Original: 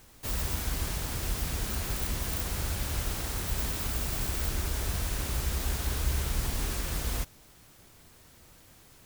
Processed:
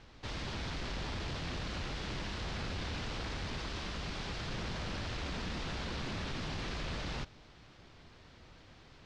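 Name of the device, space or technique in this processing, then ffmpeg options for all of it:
synthesiser wavefolder: -af "aeval=exprs='0.0237*(abs(mod(val(0)/0.0237+3,4)-2)-1)':c=same,lowpass=f=4.7k:w=0.5412,lowpass=f=4.7k:w=1.3066,volume=1dB"

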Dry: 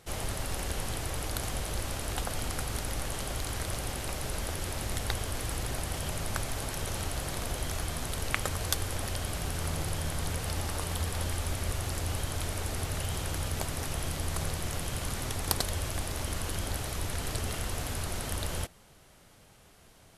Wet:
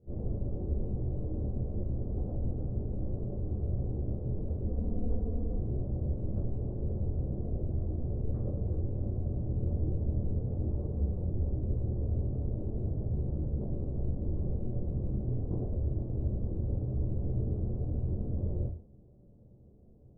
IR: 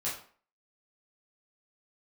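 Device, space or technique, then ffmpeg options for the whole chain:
next room: -filter_complex "[0:a]asettb=1/sr,asplit=3[a][b][c];[a]atrim=end=4.644[d];[b]atrim=start=4.64:end=5.56,asetpts=PTS-STARTPTS,afade=t=in:d=0.004:c=qsin,afade=t=out:st=0.916:d=0.004:c=qsin,aecho=1:1:4.2:0.85,atrim=end_sample=40572[e];[c]atrim=start=5.556[f];[d][e]acrossfade=d=0.004:c1=hsin:c2=qsin[g];[g][f]acrossfade=d=0.004:c1=qsin:c2=hsin,lowpass=f=430:w=0.5412,lowpass=f=430:w=1.3066[h];[1:a]atrim=start_sample=2205[i];[h][i]afir=irnorm=-1:irlink=0"

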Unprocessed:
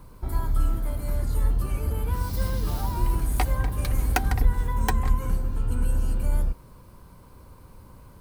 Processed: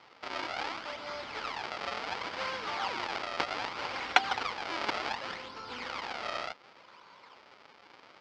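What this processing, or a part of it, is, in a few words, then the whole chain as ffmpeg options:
circuit-bent sampling toy: -af "acrusher=samples=39:mix=1:aa=0.000001:lfo=1:lforange=62.4:lforate=0.67,highpass=560,equalizer=f=860:t=q:w=4:g=4,equalizer=f=1.3k:t=q:w=4:g=6,equalizer=f=2.2k:t=q:w=4:g=6,equalizer=f=3.1k:t=q:w=4:g=4,equalizer=f=4.8k:t=q:w=4:g=7,lowpass=f=5.2k:w=0.5412,lowpass=f=5.2k:w=1.3066"

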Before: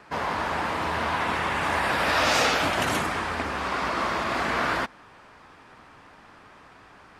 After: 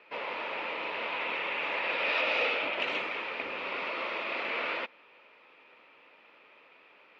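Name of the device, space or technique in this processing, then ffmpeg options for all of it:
phone earpiece: -filter_complex "[0:a]highpass=490,equalizer=f=510:t=q:w=4:g=5,equalizer=f=750:t=q:w=4:g=-9,equalizer=f=1.1k:t=q:w=4:g=-7,equalizer=f=1.6k:t=q:w=4:g=-10,equalizer=f=2.5k:t=q:w=4:g=9,lowpass=f=3.6k:w=0.5412,lowpass=f=3.6k:w=1.3066,asettb=1/sr,asplit=3[a][b][c];[a]atrim=end=2.214[d];[b]atrim=start=2.21:end=2.8,asetpts=PTS-STARTPTS,afade=t=in:d=0.004:c=qsin,afade=t=out:st=0.586:d=0.004:c=qsin,lowpass=f=2.9k:p=1[e];[c]atrim=start=2.796[f];[d][e]acrossfade=d=0.004:c1=hsin:c2=qsin[g];[g][f]acrossfade=d=0.004:c1=qsin:c2=hsin,asettb=1/sr,asplit=3[h][i][j];[h]atrim=end=3.424[k];[i]atrim=start=3.42:end=3.84,asetpts=PTS-STARTPTS,afade=t=in:d=0.004:c=qsin,afade=t=out:st=0.416:d=0.004:c=qsin,lowshelf=f=170:g=9[l];[j]atrim=start=3.836[m];[k][l]acrossfade=d=0.004:c1=hsin:c2=qsin[n];[n][m]acrossfade=d=0.004:c1=qsin:c2=hsin,volume=-4dB"

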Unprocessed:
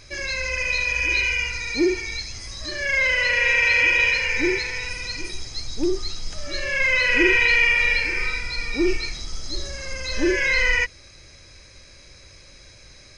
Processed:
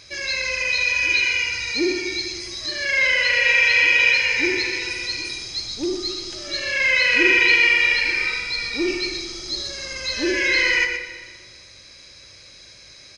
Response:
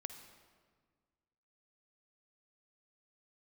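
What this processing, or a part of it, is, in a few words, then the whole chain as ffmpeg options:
PA in a hall: -filter_complex "[0:a]highpass=f=140:p=1,equalizer=f=3.9k:t=o:w=1.3:g=7,aecho=1:1:121:0.376[a];[1:a]atrim=start_sample=2205[b];[a][b]afir=irnorm=-1:irlink=0,volume=2dB"

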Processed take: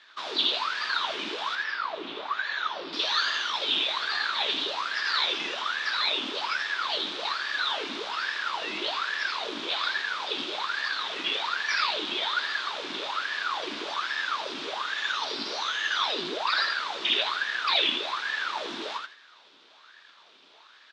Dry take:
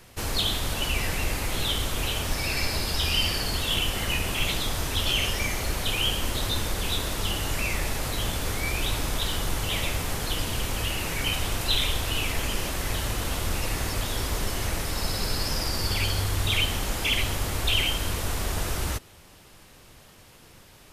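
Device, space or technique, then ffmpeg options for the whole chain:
voice changer toy: -filter_complex "[0:a]asettb=1/sr,asplit=3[a][b][c];[a]atrim=end=1.554[d];[b]atrim=start=1.55:end=2.93,asetpts=PTS-STARTPTS,afade=t=in:d=0.004:c=qsin,afade=t=out:st=1.376:d=0.004:c=qsin,lowpass=f=1.1k:p=1[e];[c]atrim=start=2.926[f];[d][e]acrossfade=d=0.004:c1=hsin:c2=qsin[g];[g][f]acrossfade=d=0.004:c1=qsin:c2=hsin,aecho=1:1:82|164|246:0.562|0.124|0.0272,aeval=exprs='val(0)*sin(2*PI*1000*n/s+1000*0.75/1.2*sin(2*PI*1.2*n/s))':c=same,highpass=500,equalizer=f=520:t=q:w=4:g=-6,equalizer=f=750:t=q:w=4:g=-7,equalizer=f=2k:t=q:w=4:g=-4,equalizer=f=3.6k:t=q:w=4:g=8,lowpass=f=4.7k:w=0.5412,lowpass=f=4.7k:w=1.3066"

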